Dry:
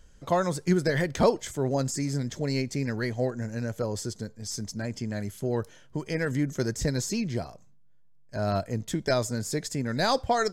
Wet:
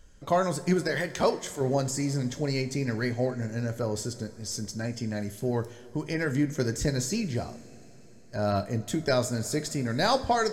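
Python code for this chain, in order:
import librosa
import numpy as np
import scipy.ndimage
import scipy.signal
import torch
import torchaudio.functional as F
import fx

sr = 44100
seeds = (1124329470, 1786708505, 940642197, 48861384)

y = fx.low_shelf(x, sr, hz=340.0, db=-9.5, at=(0.81, 1.61))
y = fx.rev_double_slope(y, sr, seeds[0], early_s=0.38, late_s=4.5, knee_db=-18, drr_db=8.5)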